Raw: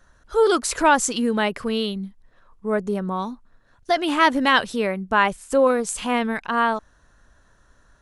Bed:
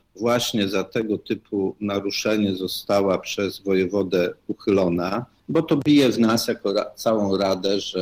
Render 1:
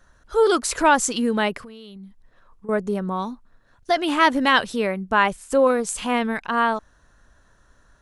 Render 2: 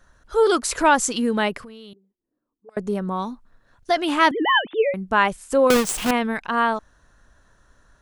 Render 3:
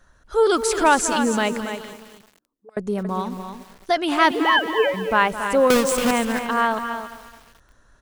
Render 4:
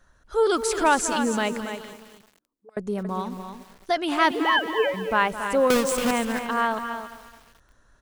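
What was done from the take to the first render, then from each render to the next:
1.57–2.69 compressor 12:1, threshold -37 dBFS
1.93–2.77 auto-wah 240–4700 Hz, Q 7.7, up, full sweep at -24 dBFS; 4.31–4.94 sine-wave speech; 5.7–6.11 half-waves squared off
on a send: echo 0.279 s -9 dB; on the sum: lo-fi delay 0.214 s, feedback 55%, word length 6-bit, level -12.5 dB
gain -3.5 dB

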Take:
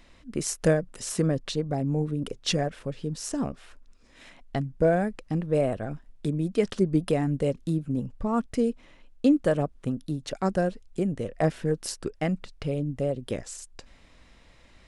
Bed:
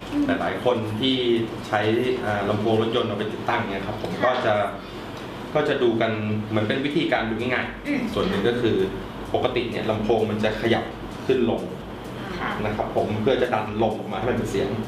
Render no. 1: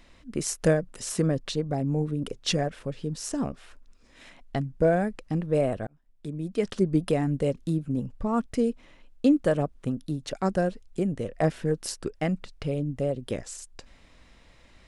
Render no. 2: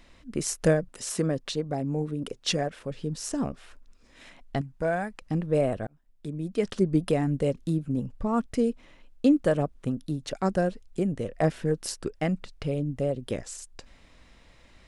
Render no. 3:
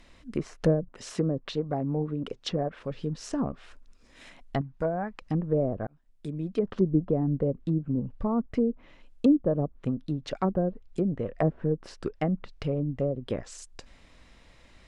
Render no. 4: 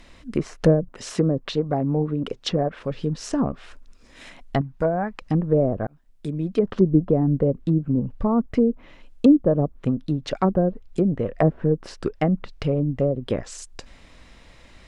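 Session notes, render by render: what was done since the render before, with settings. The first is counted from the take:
5.87–6.85 fade in
0.88–2.91 low shelf 140 Hz -8 dB; 4.61–5.22 resonant low shelf 650 Hz -7 dB, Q 1.5
treble ducked by the level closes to 530 Hz, closed at -22 dBFS; dynamic EQ 1100 Hz, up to +5 dB, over -49 dBFS, Q 2.3
gain +6.5 dB

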